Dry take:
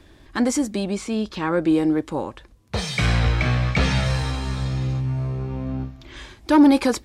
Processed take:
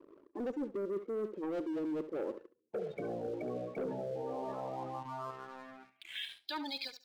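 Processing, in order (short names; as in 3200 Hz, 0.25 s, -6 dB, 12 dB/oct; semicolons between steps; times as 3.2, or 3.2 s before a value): ending faded out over 0.57 s; band-pass sweep 420 Hz -> 4200 Hz, 4.12–6.55; spectral gate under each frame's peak -15 dB strong; hard clip -23.5 dBFS, distortion -12 dB; in parallel at +1 dB: level quantiser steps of 16 dB; on the sum: HPF 250 Hz 12 dB/oct; high shelf 6100 Hz -6.5 dB; sample leveller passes 2; flutter echo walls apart 12 m, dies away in 0.28 s; reverse; compressor 5:1, threshold -31 dBFS, peak gain reduction 12 dB; reverse; gain -5 dB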